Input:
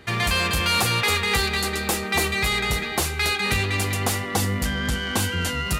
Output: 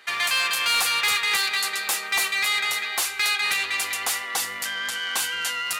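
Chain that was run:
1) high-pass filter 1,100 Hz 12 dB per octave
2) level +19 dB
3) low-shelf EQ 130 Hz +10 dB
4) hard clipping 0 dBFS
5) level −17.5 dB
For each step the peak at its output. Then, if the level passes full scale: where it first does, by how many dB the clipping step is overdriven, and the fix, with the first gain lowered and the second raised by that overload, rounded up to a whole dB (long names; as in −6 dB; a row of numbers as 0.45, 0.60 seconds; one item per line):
−12.5, +6.5, +6.5, 0.0, −17.5 dBFS
step 2, 6.5 dB
step 2 +12 dB, step 5 −10.5 dB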